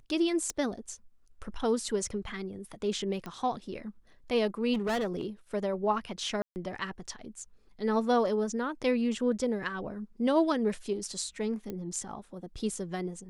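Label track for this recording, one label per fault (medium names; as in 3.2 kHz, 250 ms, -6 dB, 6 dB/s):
0.500000	0.500000	pop -20 dBFS
3.260000	3.260000	pop -25 dBFS
4.730000	5.260000	clipped -27 dBFS
6.420000	6.560000	dropout 139 ms
11.700000	11.700000	pop -24 dBFS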